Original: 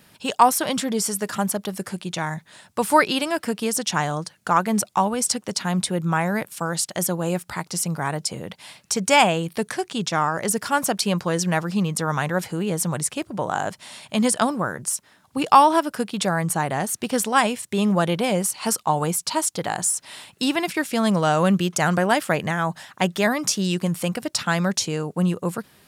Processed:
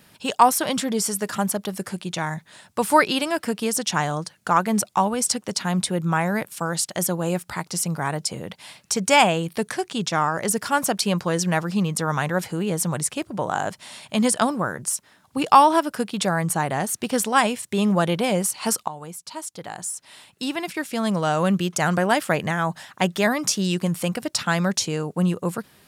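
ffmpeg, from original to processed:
-filter_complex "[0:a]asplit=2[s0][s1];[s0]atrim=end=18.88,asetpts=PTS-STARTPTS,afade=t=out:st=18.876:d=0.004:c=hsin:silence=0.158489[s2];[s1]atrim=start=18.88,asetpts=PTS-STARTPTS,afade=t=in:d=3.42:silence=0.158489[s3];[s2][s3]concat=n=2:v=0:a=1"

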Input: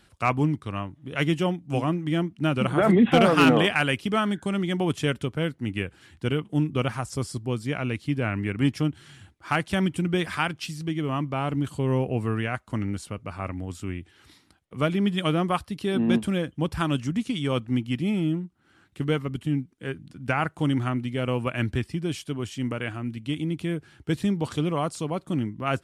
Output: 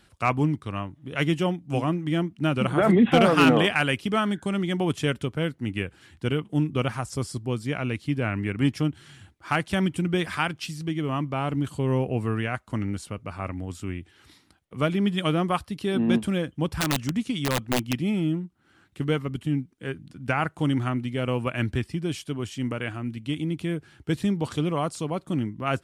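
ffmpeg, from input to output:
-filter_complex "[0:a]asettb=1/sr,asplit=3[s0][s1][s2];[s0]atrim=end=16.694[s3];[s1]atrim=start=16.69:end=17.93,asetpts=PTS-STARTPTS,afade=t=in:d=0.004:c=qsin,afade=t=out:st=1.236:d=0.004:c=qsin,aeval=exprs='(mod(7.08*val(0)+1,2)-1)/7.08':c=same[s4];[s2]atrim=start=17.926[s5];[s3][s4]acrossfade=d=0.004:c1=hsin:c2=qsin[s6];[s6][s5]acrossfade=d=0.004:c1=qsin:c2=hsin"

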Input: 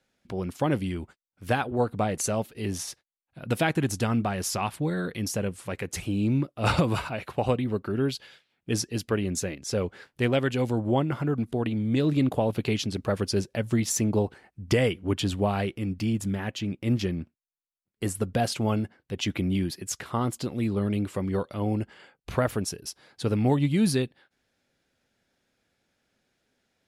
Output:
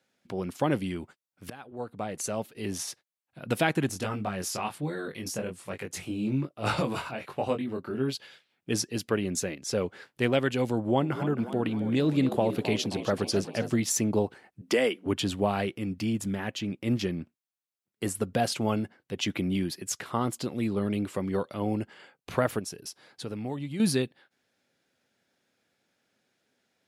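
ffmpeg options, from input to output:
-filter_complex "[0:a]asplit=3[s0][s1][s2];[s0]afade=t=out:st=3.88:d=0.02[s3];[s1]flanger=delay=19.5:depth=4:speed=1.2,afade=t=in:st=3.88:d=0.02,afade=t=out:st=8.12:d=0.02[s4];[s2]afade=t=in:st=8.12:d=0.02[s5];[s3][s4][s5]amix=inputs=3:normalize=0,asettb=1/sr,asplit=3[s6][s7][s8];[s6]atrim=end=10.754[s9];[s7]atrim=start=10.75:end=13.76,asetpts=PTS-STARTPTS,afade=t=in:d=0.004:c=qsin,afade=t=out:st=3.006:d=0.004:c=qsin,asplit=6[s10][s11][s12][s13][s14][s15];[s11]adelay=266,afreqshift=60,volume=0.251[s16];[s12]adelay=532,afreqshift=120,volume=0.129[s17];[s13]adelay=798,afreqshift=180,volume=0.0653[s18];[s14]adelay=1064,afreqshift=240,volume=0.0335[s19];[s15]adelay=1330,afreqshift=300,volume=0.017[s20];[s10][s16][s17][s18][s19][s20]amix=inputs=6:normalize=0,atrim=end_sample=132741[s21];[s8]atrim=start=13.756[s22];[s9][s21]acrossfade=d=0.004:c1=hsin:c2=qsin[s23];[s23][s22]acrossfade=d=0.004:c1=qsin:c2=hsin,asettb=1/sr,asplit=3[s24][s25][s26];[s24]atrim=end=14.614[s27];[s25]atrim=start=14.61:end=15.06,asetpts=PTS-STARTPTS,afade=t=in:d=0.004:c=qsin,afade=t=out:st=0.446:d=0.004:c=qsin,highpass=f=230:w=0.5412,highpass=f=230:w=1.3066[s28];[s26]atrim=start=15.056[s29];[s27][s28]acrossfade=d=0.004:c1=hsin:c2=qsin[s30];[s30][s29]acrossfade=d=0.004:c1=qsin:c2=hsin,asettb=1/sr,asplit=3[s31][s32][s33];[s31]atrim=end=22.594[s34];[s32]atrim=start=22.59:end=23.8,asetpts=PTS-STARTPTS,afade=t=in:d=0.004:c=qsin,afade=t=out:st=1.206:d=0.004:c=qsin,acompressor=threshold=0.0141:ratio=2:attack=3.2:release=140:knee=1:detection=peak[s35];[s33]atrim=start=23.796[s36];[s34][s35]acrossfade=d=0.004:c1=hsin:c2=qsin[s37];[s37][s36]acrossfade=d=0.004:c1=qsin:c2=hsin,asplit=2[s38][s39];[s38]atrim=end=1.5,asetpts=PTS-STARTPTS,afade=t=out:st=1.496:d=0.004:c=hsin:silence=0.0668344[s40];[s39]atrim=start=1.5,asetpts=PTS-STARTPTS,afade=t=in:d=1.33:silence=0.0668344[s41];[s40][s41]concat=n=2:v=0:a=1,highpass=110,lowshelf=f=160:g=-3.5"

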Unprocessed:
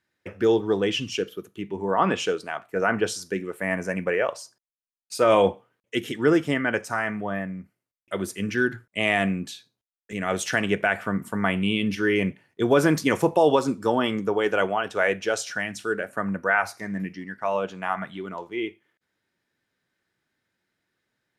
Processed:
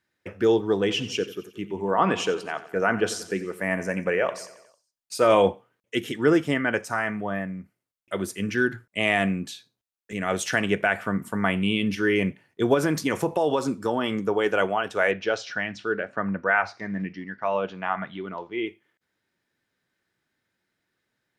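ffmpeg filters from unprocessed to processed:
-filter_complex "[0:a]asettb=1/sr,asplit=3[s0][s1][s2];[s0]atrim=end=0.714[s3];[s1]atrim=start=0.71:end=5.32,asetpts=PTS-STARTPTS,afade=t=in:d=0.004:c=qsin,afade=t=out:st=4.606:d=0.004:c=qsin,aecho=1:1:90|180|270|360|450:0.168|0.0923|0.0508|0.0279|0.0154,atrim=end_sample=203301[s4];[s2]atrim=start=5.316[s5];[s3][s4]acrossfade=d=0.004:c1=hsin:c2=qsin[s6];[s6][s5]acrossfade=d=0.004:c1=qsin:c2=hsin,asettb=1/sr,asplit=3[s7][s8][s9];[s7]atrim=end=12.744[s10];[s8]atrim=start=12.74:end=14.18,asetpts=PTS-STARTPTS,afade=t=in:d=0.004:c=qsin,afade=t=out:st=1.436:d=0.004:c=qsin,acompressor=threshold=0.0891:ratio=2:attack=3.2:release=140:knee=1:detection=peak[s11];[s9]atrim=start=14.176[s12];[s10][s11]acrossfade=d=0.004:c1=hsin:c2=qsin[s13];[s13][s12]acrossfade=d=0.004:c1=qsin:c2=hsin,asettb=1/sr,asplit=3[s14][s15][s16];[s14]atrim=end=15.114[s17];[s15]atrim=start=15.11:end=18.67,asetpts=PTS-STARTPTS,afade=t=in:d=0.004:c=qsin,afade=t=out:st=3.556:d=0.004:c=qsin,lowpass=f=5000:w=0.5412,lowpass=f=5000:w=1.3066[s18];[s16]atrim=start=18.666[s19];[s17][s18]acrossfade=d=0.004:c1=hsin:c2=qsin[s20];[s20][s19]acrossfade=d=0.004:c1=qsin:c2=hsin"

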